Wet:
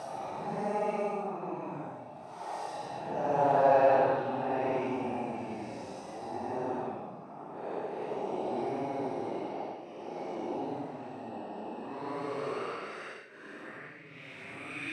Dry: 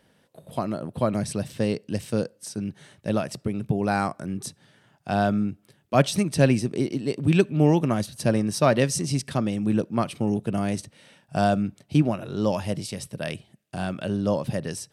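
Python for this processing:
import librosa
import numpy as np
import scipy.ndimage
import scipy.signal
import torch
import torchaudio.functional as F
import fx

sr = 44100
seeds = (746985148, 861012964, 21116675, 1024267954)

y = fx.bin_compress(x, sr, power=0.6)
y = fx.paulstretch(y, sr, seeds[0], factor=13.0, window_s=0.05, from_s=6.14)
y = fx.filter_sweep_bandpass(y, sr, from_hz=840.0, to_hz=2200.0, start_s=11.7, end_s=14.22, q=6.6)
y = y * 10.0 ** (6.0 / 20.0)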